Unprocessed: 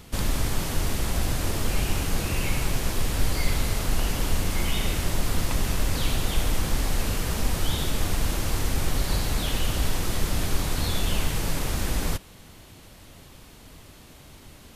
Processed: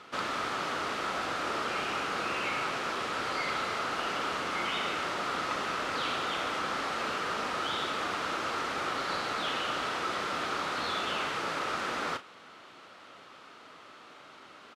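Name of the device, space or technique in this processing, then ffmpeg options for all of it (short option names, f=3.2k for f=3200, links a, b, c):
intercom: -filter_complex "[0:a]highpass=400,lowpass=3.7k,equalizer=f=1.3k:t=o:w=0.37:g=11.5,asoftclip=type=tanh:threshold=-20.5dB,asplit=2[a][b];[b]adelay=36,volume=-11.5dB[c];[a][c]amix=inputs=2:normalize=0"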